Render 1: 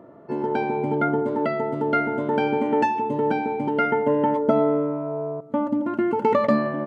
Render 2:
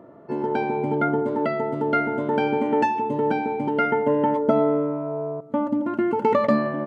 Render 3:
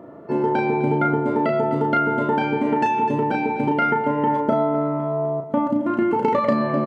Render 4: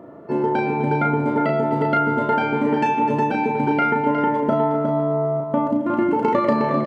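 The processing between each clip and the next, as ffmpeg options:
ffmpeg -i in.wav -af anull out.wav
ffmpeg -i in.wav -filter_complex "[0:a]aecho=1:1:253|506|759|1012:0.158|0.0713|0.0321|0.0144,acompressor=threshold=-21dB:ratio=6,asplit=2[link_01][link_02];[link_02]adelay=35,volume=-5dB[link_03];[link_01][link_03]amix=inputs=2:normalize=0,volume=4.5dB" out.wav
ffmpeg -i in.wav -af "aecho=1:1:361:0.473" out.wav

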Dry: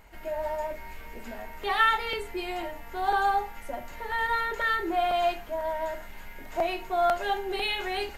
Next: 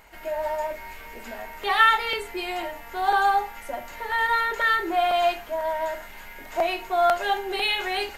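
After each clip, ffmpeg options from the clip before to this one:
ffmpeg -i in.wav -af "lowshelf=frequency=330:gain=-9.5,volume=5.5dB" out.wav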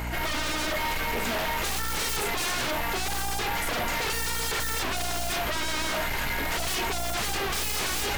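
ffmpeg -i in.wav -af "aeval=exprs='(tanh(35.5*val(0)+0.2)-tanh(0.2))/35.5':channel_layout=same,aeval=exprs='val(0)+0.00398*(sin(2*PI*60*n/s)+sin(2*PI*2*60*n/s)/2+sin(2*PI*3*60*n/s)/3+sin(2*PI*4*60*n/s)/4+sin(2*PI*5*60*n/s)/5)':channel_layout=same,aeval=exprs='0.0422*sin(PI/2*3.55*val(0)/0.0422)':channel_layout=same,volume=2.5dB" out.wav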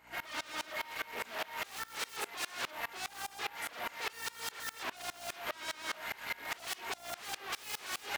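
ffmpeg -i in.wav -af "highpass=frequency=920:poles=1,highshelf=frequency=3800:gain=-7.5,aeval=exprs='val(0)*pow(10,-25*if(lt(mod(-4.9*n/s,1),2*abs(-4.9)/1000),1-mod(-4.9*n/s,1)/(2*abs(-4.9)/1000),(mod(-4.9*n/s,1)-2*abs(-4.9)/1000)/(1-2*abs(-4.9)/1000))/20)':channel_layout=same" out.wav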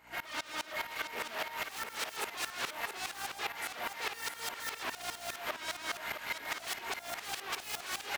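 ffmpeg -i in.wav -af "aecho=1:1:666:0.422,volume=1dB" out.wav

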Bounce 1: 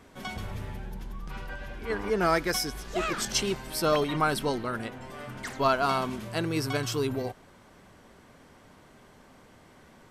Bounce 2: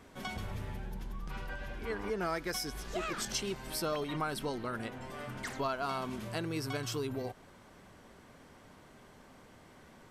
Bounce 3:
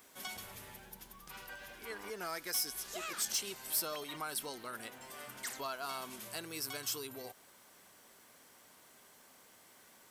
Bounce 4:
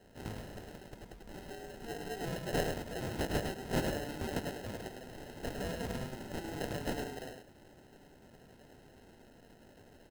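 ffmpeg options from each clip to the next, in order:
ffmpeg -i in.wav -af "acompressor=threshold=-33dB:ratio=2.5,volume=-2dB" out.wav
ffmpeg -i in.wav -af "aemphasis=mode=production:type=riaa,asoftclip=type=tanh:threshold=-21dB,volume=-5.5dB" out.wav
ffmpeg -i in.wav -filter_complex "[0:a]acrusher=samples=38:mix=1:aa=0.000001,asplit=2[link_01][link_02];[link_02]aecho=0:1:105:0.531[link_03];[link_01][link_03]amix=inputs=2:normalize=0,volume=2dB" out.wav

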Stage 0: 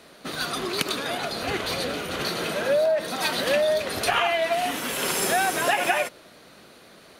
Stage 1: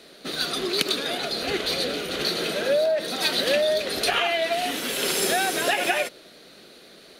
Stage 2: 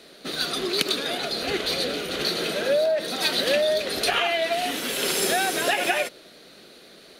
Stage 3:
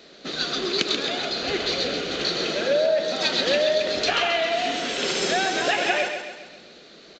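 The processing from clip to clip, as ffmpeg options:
ffmpeg -i in.wav -af "equalizer=frequency=100:width_type=o:width=0.67:gain=-11,equalizer=frequency=400:width_type=o:width=0.67:gain=4,equalizer=frequency=1000:width_type=o:width=0.67:gain=-7,equalizer=frequency=4000:width_type=o:width=0.67:gain=6" out.wav
ffmpeg -i in.wav -af anull out.wav
ffmpeg -i in.wav -af "aecho=1:1:134|268|402|536|670|804:0.447|0.223|0.112|0.0558|0.0279|0.014,aresample=16000,aresample=44100" out.wav

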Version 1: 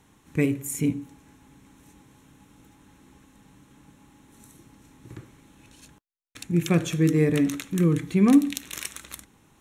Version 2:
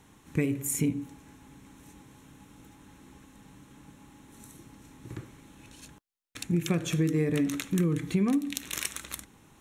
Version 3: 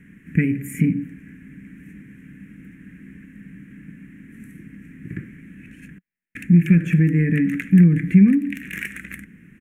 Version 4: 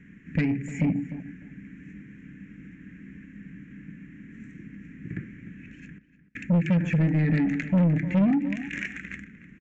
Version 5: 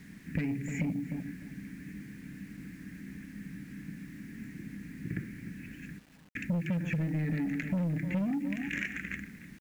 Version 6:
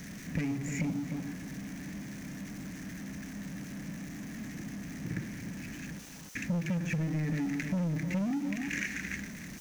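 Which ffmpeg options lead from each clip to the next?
ffmpeg -i in.wav -af "acompressor=threshold=-24dB:ratio=12,volume=1.5dB" out.wav
ffmpeg -i in.wav -af "asoftclip=type=tanh:threshold=-18.5dB,firequalizer=gain_entry='entry(120,0);entry(180,13);entry(320,0);entry(520,-9);entry(830,-29);entry(1700,10);entry(2400,5);entry(3800,-24);entry(8800,-12);entry(14000,-9)':delay=0.05:min_phase=1,volume=5dB" out.wav
ffmpeg -i in.wav -filter_complex "[0:a]aresample=16000,asoftclip=type=tanh:threshold=-15dB,aresample=44100,asplit=2[link_01][link_02];[link_02]adelay=301,lowpass=frequency=2400:poles=1,volume=-14dB,asplit=2[link_03][link_04];[link_04]adelay=301,lowpass=frequency=2400:poles=1,volume=0.19[link_05];[link_01][link_03][link_05]amix=inputs=3:normalize=0,volume=-2.5dB" out.wav
ffmpeg -i in.wav -af "acompressor=threshold=-29dB:ratio=10,acrusher=bits=9:mix=0:aa=0.000001" out.wav
ffmpeg -i in.wav -af "aeval=exprs='val(0)+0.5*0.00944*sgn(val(0))':channel_layout=same,equalizer=frequency=6100:width_type=o:width=0.39:gain=11,volume=-1.5dB" out.wav

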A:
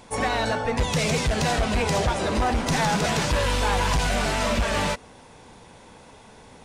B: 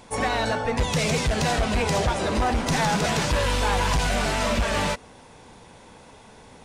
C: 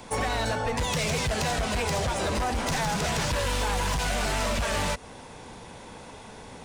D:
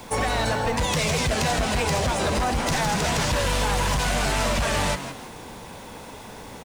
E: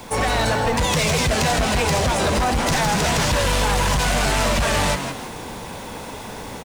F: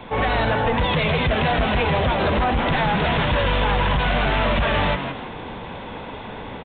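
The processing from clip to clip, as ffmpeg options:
ffmpeg -i in.wav -af anull out.wav
ffmpeg -i in.wav -filter_complex "[0:a]acrossover=split=120|410|5800[link_01][link_02][link_03][link_04];[link_01]acompressor=threshold=-32dB:ratio=4[link_05];[link_02]acompressor=threshold=-41dB:ratio=4[link_06];[link_03]acompressor=threshold=-31dB:ratio=4[link_07];[link_04]acompressor=threshold=-40dB:ratio=4[link_08];[link_05][link_06][link_07][link_08]amix=inputs=4:normalize=0,asoftclip=type=hard:threshold=-26.5dB,volume=4dB" out.wav
ffmpeg -i in.wav -filter_complex "[0:a]acrusher=bits=8:mix=0:aa=0.000001,asplit=2[link_01][link_02];[link_02]asplit=4[link_03][link_04][link_05][link_06];[link_03]adelay=165,afreqshift=88,volume=-11dB[link_07];[link_04]adelay=330,afreqshift=176,volume=-20.1dB[link_08];[link_05]adelay=495,afreqshift=264,volume=-29.2dB[link_09];[link_06]adelay=660,afreqshift=352,volume=-38.4dB[link_10];[link_07][link_08][link_09][link_10]amix=inputs=4:normalize=0[link_11];[link_01][link_11]amix=inputs=2:normalize=0,volume=3.5dB" out.wav
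ffmpeg -i in.wav -filter_complex "[0:a]dynaudnorm=framelen=110:gausssize=3:maxgain=4dB,asplit=2[link_01][link_02];[link_02]aeval=exprs='0.0631*(abs(mod(val(0)/0.0631+3,4)-2)-1)':channel_layout=same,volume=-8.5dB[link_03];[link_01][link_03]amix=inputs=2:normalize=0" out.wav
ffmpeg -i in.wav -af "aresample=8000,aresample=44100" out.wav

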